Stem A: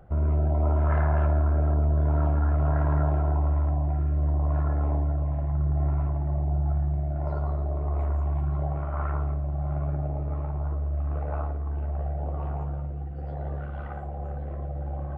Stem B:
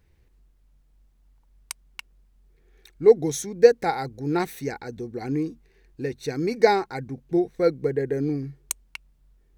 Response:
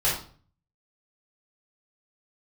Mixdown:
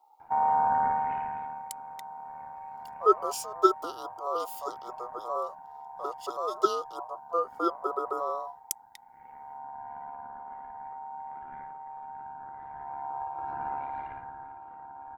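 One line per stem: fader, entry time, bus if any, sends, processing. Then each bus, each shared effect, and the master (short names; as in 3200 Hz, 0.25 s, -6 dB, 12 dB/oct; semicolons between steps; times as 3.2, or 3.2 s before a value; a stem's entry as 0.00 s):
8.27 s -4 dB -> 8.86 s -16 dB -> 12.69 s -16 dB -> 13.15 s -4.5 dB -> 13.96 s -4.5 dB -> 14.56 s -15.5 dB, 0.20 s, no send, auto duck -19 dB, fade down 0.95 s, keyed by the second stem
-4.0 dB, 0.00 s, no send, Chebyshev band-stop 570–2900 Hz, order 5; high shelf 11000 Hz +10.5 dB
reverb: off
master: low shelf 85 Hz +9.5 dB; ring modulator 850 Hz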